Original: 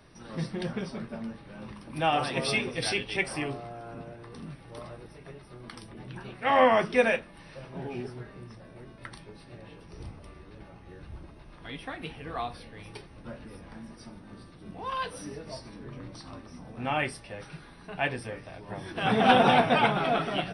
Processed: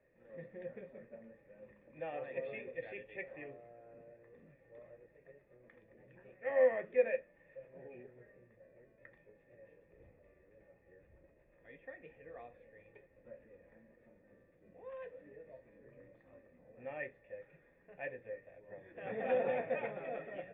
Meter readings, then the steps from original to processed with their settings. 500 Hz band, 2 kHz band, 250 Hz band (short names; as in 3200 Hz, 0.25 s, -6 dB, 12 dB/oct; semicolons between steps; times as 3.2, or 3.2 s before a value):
-7.5 dB, -15.5 dB, -21.0 dB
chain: vocal tract filter e; gain -3 dB